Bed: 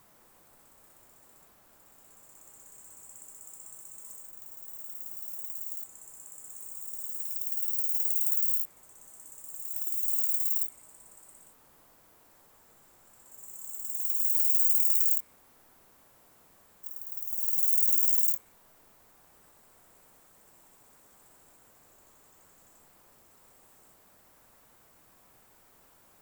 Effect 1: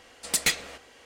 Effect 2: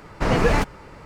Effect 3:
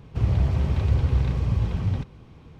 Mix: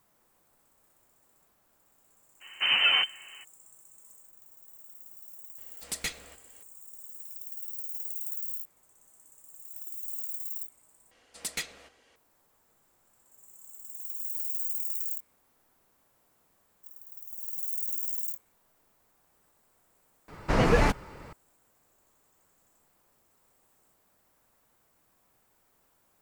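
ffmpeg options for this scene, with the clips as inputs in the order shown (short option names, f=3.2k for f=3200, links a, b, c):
-filter_complex "[2:a]asplit=2[a][b];[1:a]asplit=2[c][d];[0:a]volume=-8.5dB[e];[a]lowpass=f=2.6k:t=q:w=0.5098,lowpass=f=2.6k:t=q:w=0.6013,lowpass=f=2.6k:t=q:w=0.9,lowpass=f=2.6k:t=q:w=2.563,afreqshift=-3100[f];[c]lowshelf=f=95:g=10.5[g];[e]asplit=2[h][i];[h]atrim=end=11.114[j];[d]atrim=end=1.05,asetpts=PTS-STARTPTS,volume=-10.5dB[k];[i]atrim=start=12.156[l];[f]atrim=end=1.05,asetpts=PTS-STARTPTS,volume=-5.5dB,afade=t=in:d=0.02,afade=t=out:st=1.03:d=0.02,adelay=2400[m];[g]atrim=end=1.05,asetpts=PTS-STARTPTS,volume=-10dB,afade=t=in:d=0.004:c=hsin,afade=t=out:st=1.046:d=0.004:c=hsin,adelay=5580[n];[b]atrim=end=1.05,asetpts=PTS-STARTPTS,volume=-3.5dB,afade=t=in:d=0.004:c=hsin,afade=t=out:st=1.046:d=0.004:c=hsin,adelay=20280[o];[j][k]acrossfade=d=0.004:c1=hsin:c2=hsin[p];[p][l]acrossfade=d=0.004:c1=hsin:c2=hsin[q];[q][m][n][o]amix=inputs=4:normalize=0"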